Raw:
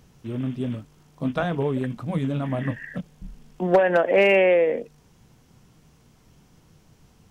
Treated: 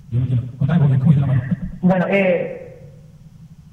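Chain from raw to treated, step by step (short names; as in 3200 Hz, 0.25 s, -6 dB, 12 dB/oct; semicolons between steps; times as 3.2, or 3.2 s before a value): resonant low shelf 210 Hz +9.5 dB, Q 3; plain phase-vocoder stretch 0.51×; tape echo 0.104 s, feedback 54%, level -9 dB, low-pass 3200 Hz; gain +4 dB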